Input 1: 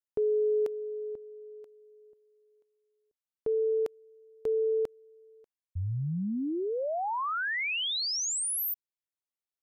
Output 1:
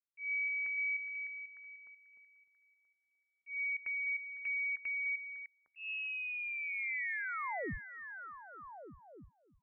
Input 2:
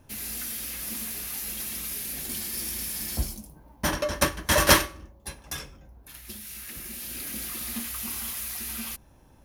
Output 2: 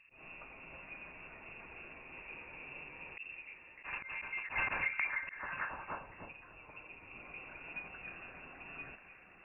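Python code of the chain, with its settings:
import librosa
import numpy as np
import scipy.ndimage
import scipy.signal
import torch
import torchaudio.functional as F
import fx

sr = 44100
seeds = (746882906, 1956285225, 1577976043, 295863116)

y = fx.echo_stepped(x, sr, ms=302, hz=420.0, octaves=0.7, feedback_pct=70, wet_db=-1.0)
y = fx.auto_swell(y, sr, attack_ms=153.0)
y = (np.mod(10.0 ** (15.0 / 20.0) * y + 1.0, 2.0) - 1.0) / 10.0 ** (15.0 / 20.0)
y = fx.freq_invert(y, sr, carrier_hz=2700)
y = y * librosa.db_to_amplitude(-8.5)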